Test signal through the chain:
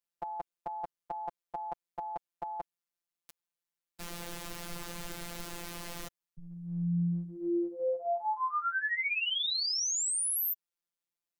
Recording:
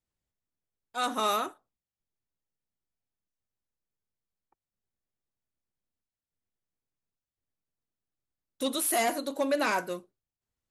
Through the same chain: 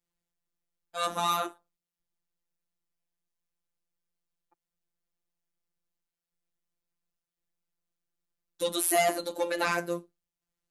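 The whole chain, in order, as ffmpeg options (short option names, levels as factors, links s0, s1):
-af "afftfilt=real='hypot(re,im)*cos(PI*b)':imag='0':win_size=1024:overlap=0.75,acontrast=46,volume=0.841"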